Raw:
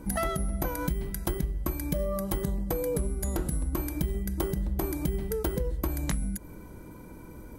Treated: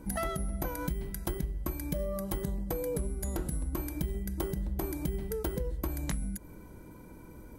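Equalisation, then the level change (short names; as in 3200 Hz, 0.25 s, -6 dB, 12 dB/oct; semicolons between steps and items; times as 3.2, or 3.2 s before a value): notch 1200 Hz, Q 27; -4.0 dB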